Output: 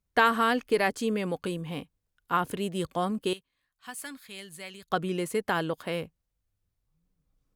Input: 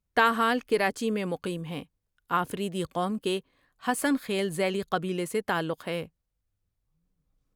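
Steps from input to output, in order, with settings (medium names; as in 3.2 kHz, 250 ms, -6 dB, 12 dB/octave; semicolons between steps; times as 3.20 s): 3.33–4.90 s: amplifier tone stack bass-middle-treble 5-5-5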